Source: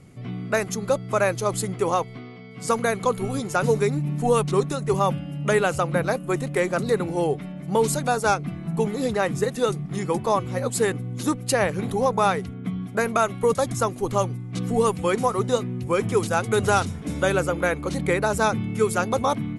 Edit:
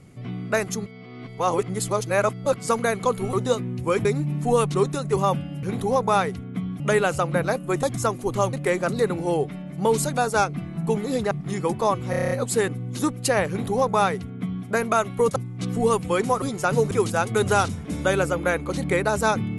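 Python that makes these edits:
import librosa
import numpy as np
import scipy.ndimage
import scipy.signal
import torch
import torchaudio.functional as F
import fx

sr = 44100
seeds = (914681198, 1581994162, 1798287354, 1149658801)

y = fx.edit(x, sr, fx.reverse_span(start_s=0.86, length_s=1.7),
    fx.swap(start_s=3.33, length_s=0.49, other_s=15.36, other_length_s=0.72),
    fx.cut(start_s=9.21, length_s=0.55),
    fx.stutter(start_s=10.55, slice_s=0.03, count=8),
    fx.duplicate(start_s=11.73, length_s=1.17, to_s=5.4),
    fx.move(start_s=13.6, length_s=0.7, to_s=6.43), tone=tone)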